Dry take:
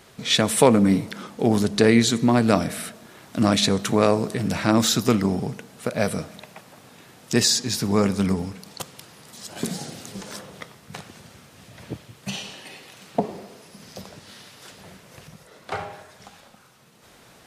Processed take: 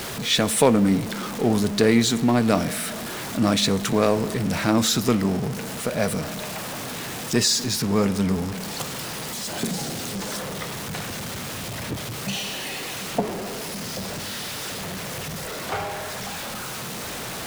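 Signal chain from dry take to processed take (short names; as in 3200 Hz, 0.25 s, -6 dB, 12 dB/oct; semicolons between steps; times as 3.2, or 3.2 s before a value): zero-crossing step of -24.5 dBFS; gain -2.5 dB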